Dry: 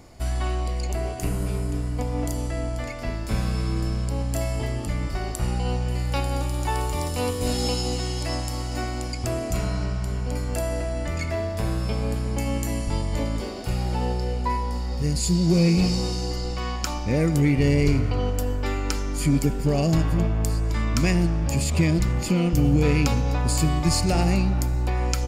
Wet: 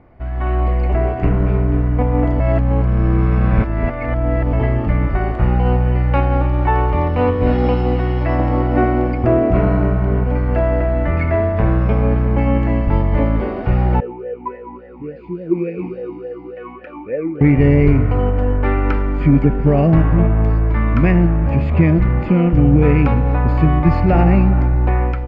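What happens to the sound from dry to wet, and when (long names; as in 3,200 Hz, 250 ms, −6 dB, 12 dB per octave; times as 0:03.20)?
0:02.40–0:04.53: reverse
0:08.39–0:10.24: parametric band 380 Hz +8 dB 2.1 octaves
0:14.00–0:17.41: formant filter swept between two vowels e-u 3.5 Hz
whole clip: low-pass filter 2,100 Hz 24 dB per octave; automatic gain control gain up to 11.5 dB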